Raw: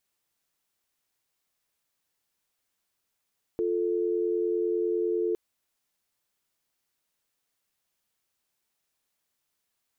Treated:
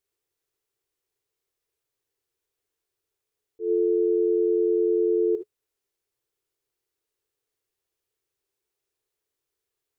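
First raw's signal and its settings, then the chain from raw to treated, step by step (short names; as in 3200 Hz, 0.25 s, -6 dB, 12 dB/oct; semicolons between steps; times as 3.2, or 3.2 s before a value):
call progress tone dial tone, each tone -27 dBFS 1.76 s
EQ curve 130 Hz 0 dB, 190 Hz -17 dB, 420 Hz +9 dB, 610 Hz -6 dB; auto swell 0.132 s; non-linear reverb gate 90 ms rising, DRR 9.5 dB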